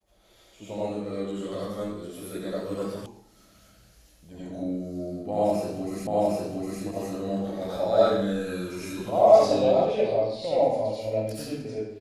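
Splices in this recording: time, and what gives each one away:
3.06 s: sound stops dead
6.07 s: repeat of the last 0.76 s

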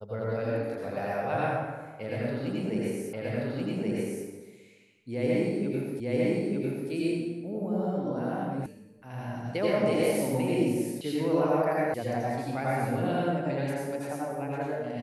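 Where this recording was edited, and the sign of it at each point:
3.13 s: repeat of the last 1.13 s
6.00 s: repeat of the last 0.9 s
8.66 s: sound stops dead
11.01 s: sound stops dead
11.94 s: sound stops dead

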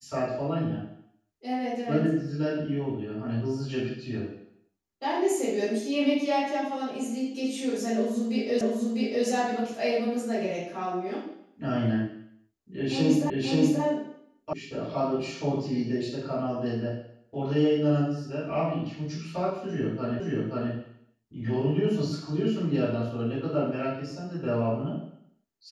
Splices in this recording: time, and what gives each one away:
8.61 s: repeat of the last 0.65 s
13.30 s: repeat of the last 0.53 s
14.53 s: sound stops dead
20.20 s: repeat of the last 0.53 s

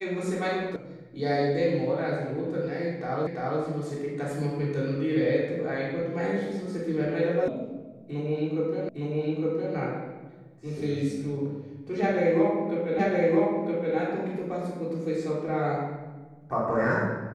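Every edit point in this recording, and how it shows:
0.76 s: sound stops dead
3.27 s: repeat of the last 0.34 s
7.48 s: sound stops dead
8.89 s: repeat of the last 0.86 s
12.99 s: repeat of the last 0.97 s

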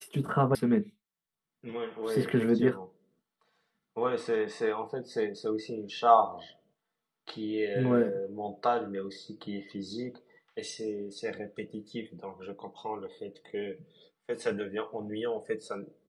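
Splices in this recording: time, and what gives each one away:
0.55 s: sound stops dead

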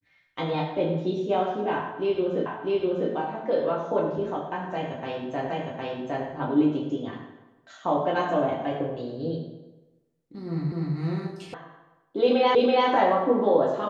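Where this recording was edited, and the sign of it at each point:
2.46 s: repeat of the last 0.65 s
5.50 s: repeat of the last 0.76 s
10.72 s: repeat of the last 0.25 s
11.54 s: sound stops dead
12.55 s: repeat of the last 0.33 s

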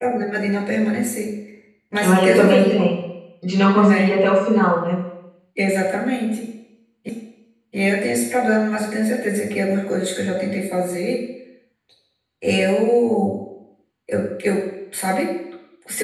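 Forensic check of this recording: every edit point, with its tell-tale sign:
7.09 s: repeat of the last 0.68 s

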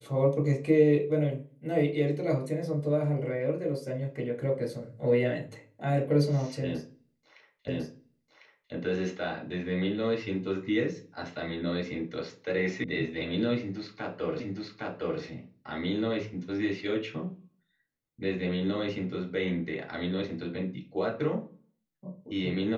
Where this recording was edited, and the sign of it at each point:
7.68 s: repeat of the last 1.05 s
12.84 s: sound stops dead
14.40 s: repeat of the last 0.81 s

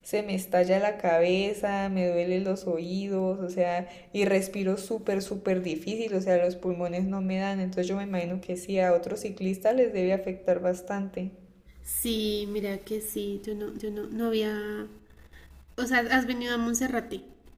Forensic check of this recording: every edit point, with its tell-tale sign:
13.78 s: repeat of the last 0.36 s

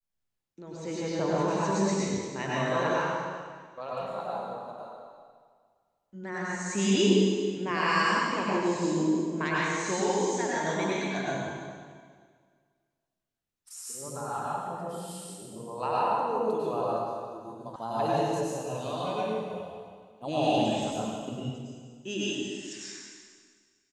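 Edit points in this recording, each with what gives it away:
17.76 s: sound stops dead

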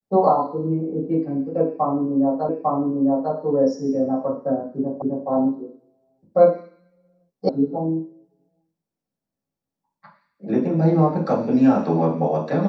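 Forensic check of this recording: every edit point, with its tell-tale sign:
2.49 s: repeat of the last 0.85 s
5.02 s: repeat of the last 0.26 s
7.49 s: sound stops dead

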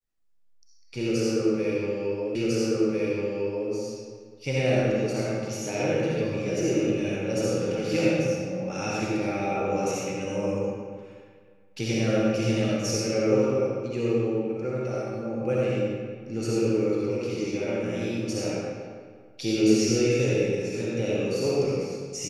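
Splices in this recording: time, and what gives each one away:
2.35 s: repeat of the last 1.35 s

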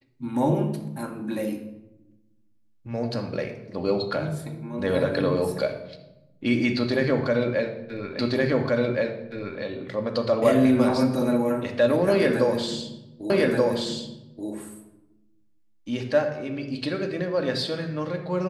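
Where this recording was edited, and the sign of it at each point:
8.19 s: repeat of the last 1.42 s
13.30 s: repeat of the last 1.18 s

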